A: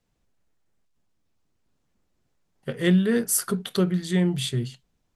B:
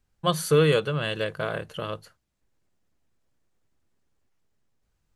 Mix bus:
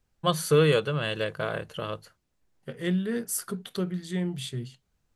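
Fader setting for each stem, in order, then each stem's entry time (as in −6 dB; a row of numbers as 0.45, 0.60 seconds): −7.5, −1.0 decibels; 0.00, 0.00 seconds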